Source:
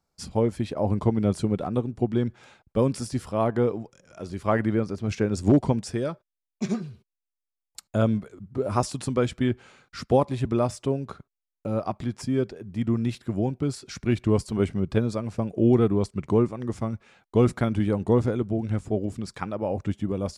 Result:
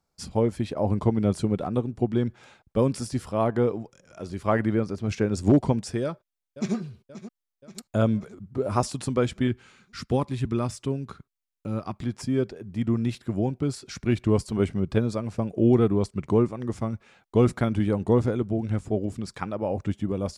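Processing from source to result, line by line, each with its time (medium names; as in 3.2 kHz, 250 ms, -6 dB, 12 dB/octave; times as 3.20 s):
6.03–6.75 s: echo throw 530 ms, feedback 60%, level -14 dB
9.47–12.02 s: peaking EQ 630 Hz -9.5 dB 1.1 oct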